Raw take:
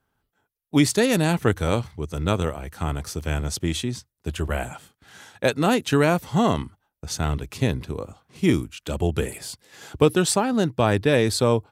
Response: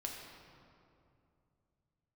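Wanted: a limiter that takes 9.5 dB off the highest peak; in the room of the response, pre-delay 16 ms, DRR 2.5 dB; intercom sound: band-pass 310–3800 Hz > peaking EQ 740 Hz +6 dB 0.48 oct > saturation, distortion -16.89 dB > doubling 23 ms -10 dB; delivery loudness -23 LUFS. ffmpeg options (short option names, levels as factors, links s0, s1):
-filter_complex "[0:a]alimiter=limit=0.251:level=0:latency=1,asplit=2[s0][s1];[1:a]atrim=start_sample=2205,adelay=16[s2];[s1][s2]afir=irnorm=-1:irlink=0,volume=0.794[s3];[s0][s3]amix=inputs=2:normalize=0,highpass=310,lowpass=3800,equalizer=f=740:t=o:w=0.48:g=6,asoftclip=threshold=0.178,asplit=2[s4][s5];[s5]adelay=23,volume=0.316[s6];[s4][s6]amix=inputs=2:normalize=0,volume=1.58"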